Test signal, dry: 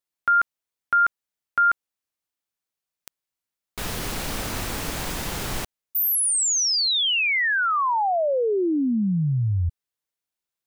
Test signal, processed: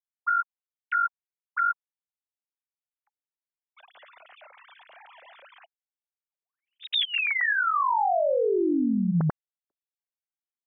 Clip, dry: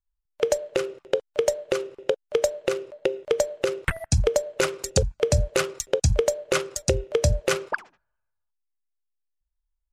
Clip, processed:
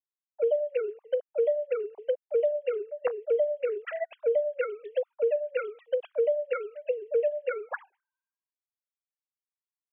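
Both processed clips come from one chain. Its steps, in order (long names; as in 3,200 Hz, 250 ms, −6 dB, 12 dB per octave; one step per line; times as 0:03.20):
three sine waves on the formant tracks
brickwall limiter −18 dBFS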